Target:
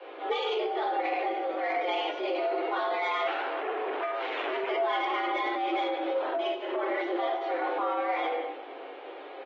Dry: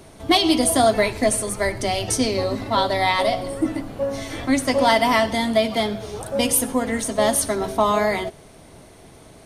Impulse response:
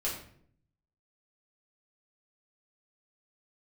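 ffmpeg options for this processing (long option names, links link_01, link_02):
-filter_complex "[0:a]highpass=100,aecho=1:1:97|194|291:0.178|0.064|0.023[link_01];[1:a]atrim=start_sample=2205[link_02];[link_01][link_02]afir=irnorm=-1:irlink=0,acompressor=threshold=-20dB:ratio=4,asettb=1/sr,asplit=3[link_03][link_04][link_05];[link_03]atrim=end=3.274[link_06];[link_04]atrim=start=3.27:end=4.7,asetpts=PTS-STARTPTS,afade=type=in:duration=0.004:curve=qsin,afade=type=out:start_time=1.426:duration=0.004:curve=qsin,aeval=exprs='0.211*(cos(1*acos(clip(val(0)/0.211,-1,1)))-cos(1*PI/2))+0.106*(cos(4*acos(clip(val(0)/0.211,-1,1)))-cos(4*PI/2))+0.00168*(cos(5*acos(clip(val(0)/0.211,-1,1)))-cos(5*PI/2))+0.0211*(cos(8*acos(clip(val(0)/0.211,-1,1)))-cos(8*PI/2))':channel_layout=same[link_07];[link_05]atrim=start=4.696[link_08];[link_06][link_07]acrossfade=duration=0.004:curve1=hsin:curve2=qsin[link_09];[link_09][link_08]acrossfade=duration=0.004:curve1=qsin:curve2=hsin,bandreject=frequency=333:width_type=h:width=4,bandreject=frequency=666:width_type=h:width=4,bandreject=frequency=999:width_type=h:width=4,bandreject=frequency=1332:width_type=h:width=4,bandreject=frequency=1665:width_type=h:width=4,bandreject=frequency=1998:width_type=h:width=4,bandreject=frequency=2331:width_type=h:width=4,bandreject=frequency=2664:width_type=h:width=4,bandreject=frequency=2997:width_type=h:width=4,bandreject=frequency=3330:width_type=h:width=4,bandreject=frequency=3663:width_type=h:width=4,bandreject=frequency=3996:width_type=h:width=4,bandreject=frequency=4329:width_type=h:width=4,bandreject=frequency=4662:width_type=h:width=4,alimiter=limit=-20dB:level=0:latency=1:release=18,highpass=frequency=220:width_type=q:width=0.5412,highpass=frequency=220:width_type=q:width=1.307,lowpass=frequency=3200:width_type=q:width=0.5176,lowpass=frequency=3200:width_type=q:width=0.7071,lowpass=frequency=3200:width_type=q:width=1.932,afreqshift=-150,asoftclip=type=tanh:threshold=-21dB,afreqshift=270" -ar 44100 -c:a aac -b:a 24k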